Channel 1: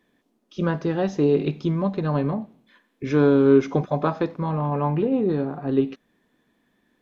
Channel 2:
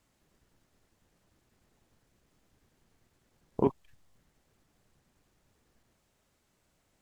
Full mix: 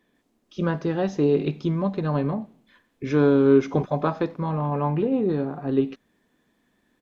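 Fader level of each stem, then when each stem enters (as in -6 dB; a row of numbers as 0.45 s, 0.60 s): -1.0 dB, -6.0 dB; 0.00 s, 0.15 s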